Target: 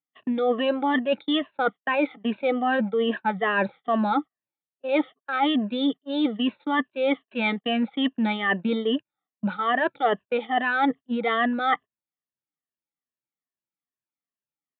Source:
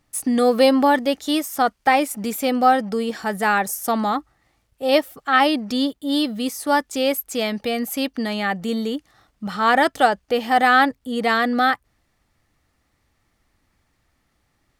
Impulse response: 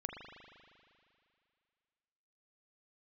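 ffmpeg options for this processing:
-af "afftfilt=real='re*pow(10,18/40*sin(2*PI*(1.4*log(max(b,1)*sr/1024/100)/log(2)-(-2.4)*(pts-256)/sr)))':imag='im*pow(10,18/40*sin(2*PI*(1.4*log(max(b,1)*sr/1024/100)/log(2)-(-2.4)*(pts-256)/sr)))':win_size=1024:overlap=0.75,agate=range=-37dB:threshold=-25dB:ratio=16:detection=peak,highpass=f=140:w=0.5412,highpass=f=140:w=1.3066,areverse,acompressor=threshold=-21dB:ratio=8,areverse,aresample=8000,aresample=44100,volume=1dB"

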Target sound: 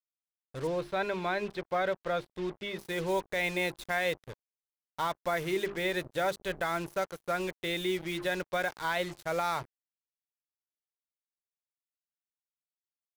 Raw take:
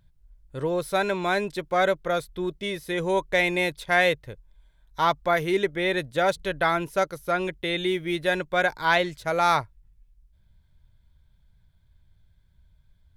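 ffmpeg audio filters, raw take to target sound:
-filter_complex "[0:a]bandreject=f=50:t=h:w=6,bandreject=f=100:t=h:w=6,bandreject=f=150:t=h:w=6,bandreject=f=200:t=h:w=6,bandreject=f=250:t=h:w=6,bandreject=f=300:t=h:w=6,bandreject=f=350:t=h:w=6,bandreject=f=400:t=h:w=6,alimiter=limit=-15.5dB:level=0:latency=1:release=68,acrusher=bits=5:mix=0:aa=0.5,asettb=1/sr,asplit=3[a][b][c];[a]atrim=end=0.674[d];[b]atrim=start=0.67:end=2.79,asetpts=PTS-STARTPTS,afade=t=in:d=0.004:c=qsin,afade=t=out:st=2.116:d=0.004:c=qsin,acrossover=split=4600[e][f];[f]acompressor=threshold=-60dB:ratio=4:attack=1:release=60[g];[e][g]amix=inputs=2:normalize=0[h];[c]atrim=start=2.786[i];[d][h]acrossfade=d=0.004:c1=hsin:c2=qsin[j];[j][i]acrossfade=d=0.004:c1=qsin:c2=hsin,volume=-5.5dB"

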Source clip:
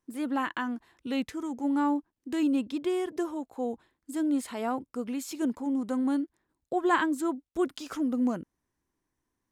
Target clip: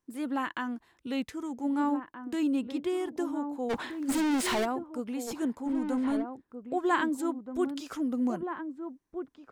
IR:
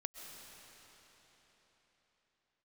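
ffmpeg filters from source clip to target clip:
-filter_complex "[0:a]asplit=3[a][b][c];[a]afade=t=out:st=3.69:d=0.02[d];[b]asplit=2[e][f];[f]highpass=f=720:p=1,volume=38dB,asoftclip=type=tanh:threshold=-20dB[g];[e][g]amix=inputs=2:normalize=0,lowpass=f=5k:p=1,volume=-6dB,afade=t=in:st=3.69:d=0.02,afade=t=out:st=4.64:d=0.02[h];[c]afade=t=in:st=4.64:d=0.02[i];[d][h][i]amix=inputs=3:normalize=0,asplit=2[j][k];[k]adelay=1574,volume=-7dB,highshelf=f=4k:g=-35.4[l];[j][l]amix=inputs=2:normalize=0,volume=-2dB"

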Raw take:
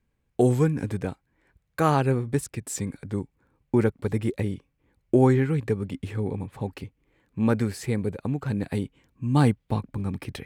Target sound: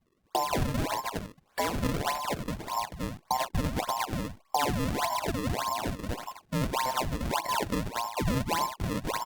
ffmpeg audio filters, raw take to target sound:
-filter_complex "[0:a]afftfilt=real='real(if(between(b,1,1008),(2*floor((b-1)/48)+1)*48-b,b),0)':imag='imag(if(between(b,1,1008),(2*floor((b-1)/48)+1)*48-b,b),0)*if(between(b,1,1008),-1,1)':win_size=2048:overlap=0.75,highshelf=f=7.5k:g=5.5,aecho=1:1:40|269|361:0.224|0.708|0.237,acrossover=split=230|1500[a][b][c];[a]acompressor=threshold=-47dB:ratio=4[d];[b]acompressor=threshold=-28dB:ratio=4[e];[c]acompressor=threshold=-42dB:ratio=4[f];[d][e][f]amix=inputs=3:normalize=0,asetrate=49833,aresample=44100,acrusher=samples=33:mix=1:aa=0.000001:lfo=1:lforange=52.8:lforate=1.7" -ar 48000 -c:a libopus -b:a 64k

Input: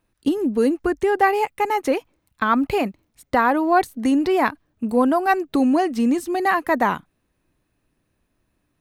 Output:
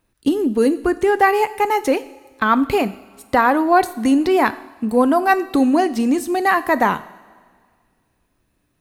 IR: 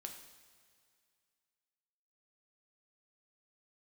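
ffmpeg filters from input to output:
-filter_complex "[0:a]asplit=2[a][b];[1:a]atrim=start_sample=2205,asetrate=52920,aresample=44100,highshelf=f=3.9k:g=8[c];[b][c]afir=irnorm=-1:irlink=0,volume=-1.5dB[d];[a][d]amix=inputs=2:normalize=0"

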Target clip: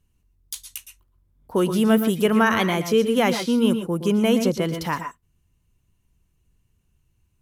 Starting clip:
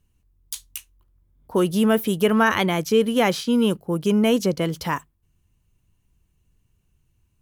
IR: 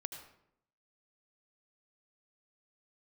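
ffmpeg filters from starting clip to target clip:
-filter_complex "[1:a]atrim=start_sample=2205,atrim=end_sample=3969,asetrate=28665,aresample=44100[a];[0:a][a]afir=irnorm=-1:irlink=0"

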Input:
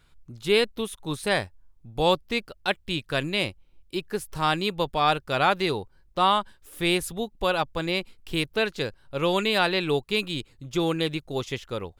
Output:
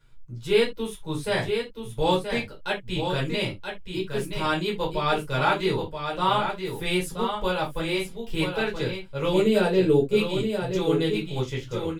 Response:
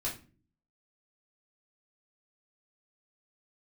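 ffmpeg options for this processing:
-filter_complex "[0:a]asettb=1/sr,asplit=3[a][b][c];[a]atrim=end=9.334[d];[b]atrim=start=9.33:end=10.17,asetpts=PTS-STARTPTS,afade=t=in:d=0.004:c=qsin,afade=t=out:st=0.836:d=0.004:c=qsin,equalizer=f=250:t=o:w=1:g=8,equalizer=f=500:t=o:w=1:g=8,equalizer=f=1k:t=o:w=1:g=-7,equalizer=f=2k:t=o:w=1:g=-5,equalizer=f=4k:t=o:w=1:g=-6,equalizer=f=8k:t=o:w=1:g=3[e];[c]atrim=start=10.166[f];[d][e]acrossfade=d=0.004:c1=hsin:c2=qsin[g];[g][f]acrossfade=d=0.004:c1=qsin:c2=hsin,aecho=1:1:977:0.473[h];[1:a]atrim=start_sample=2205,afade=t=out:st=0.16:d=0.01,atrim=end_sample=7497,asetrate=57330,aresample=44100[i];[h][i]afir=irnorm=-1:irlink=0,volume=-2.5dB"

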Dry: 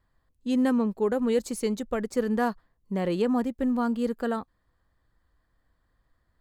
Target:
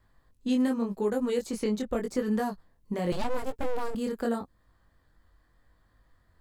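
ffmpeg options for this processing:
-filter_complex "[0:a]acrossover=split=760|4600[a][b][c];[a]acompressor=threshold=-33dB:ratio=4[d];[b]acompressor=threshold=-47dB:ratio=4[e];[c]acompressor=threshold=-53dB:ratio=4[f];[d][e][f]amix=inputs=3:normalize=0,flanger=delay=19:depth=4.6:speed=0.86,asettb=1/sr,asplit=3[g][h][i];[g]atrim=end=3.124[j];[h]atrim=start=3.12:end=3.95,asetpts=PTS-STARTPTS,afade=t=in:d=0.004:c=qsin,afade=t=out:st=0.826:d=0.004:c=qsin,aeval=exprs='abs(val(0))':c=same[k];[i]atrim=start=3.946[l];[j][k]acrossfade=d=0.004:c1=hsin:c2=qsin[m];[m][l]acrossfade=d=0.004:c1=qsin:c2=hsin,volume=8.5dB"

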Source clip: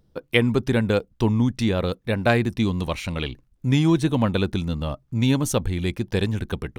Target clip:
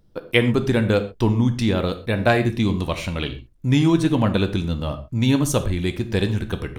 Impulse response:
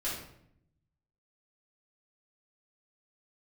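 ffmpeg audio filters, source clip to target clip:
-filter_complex "[0:a]asplit=2[a][b];[1:a]atrim=start_sample=2205,atrim=end_sample=6174[c];[b][c]afir=irnorm=-1:irlink=0,volume=-10dB[d];[a][d]amix=inputs=2:normalize=0"

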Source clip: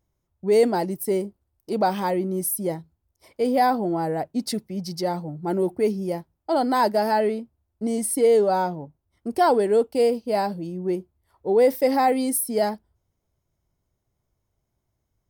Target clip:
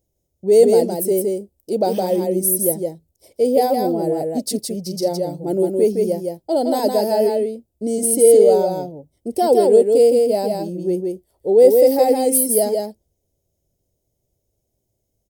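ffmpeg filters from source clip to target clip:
-af "firequalizer=gain_entry='entry(160,0);entry(530,8);entry(1100,-16);entry(2800,-2);entry(7300,8)':delay=0.05:min_phase=1,aecho=1:1:164:0.668"

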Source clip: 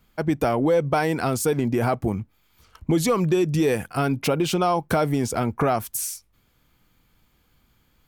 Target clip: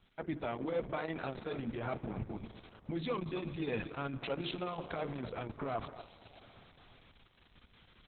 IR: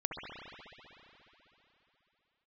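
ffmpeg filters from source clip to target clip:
-filter_complex "[0:a]highshelf=f=2.4k:g=5,aecho=1:1:246:0.168,areverse,acompressor=threshold=-36dB:ratio=6,areverse,highshelf=f=5.9k:g=9,bandreject=f=50:t=h:w=6,bandreject=f=100:t=h:w=6,bandreject=f=150:t=h:w=6,bandreject=f=200:t=h:w=6,bandreject=f=250:t=h:w=6,bandreject=f=300:t=h:w=6,bandreject=f=350:t=h:w=6,bandreject=f=400:t=h:w=6,bandreject=f=450:t=h:w=6,asplit=2[a][b];[1:a]atrim=start_sample=2205,asetrate=48510,aresample=44100[c];[b][c]afir=irnorm=-1:irlink=0,volume=-13.5dB[d];[a][d]amix=inputs=2:normalize=0" -ar 48000 -c:a libopus -b:a 6k

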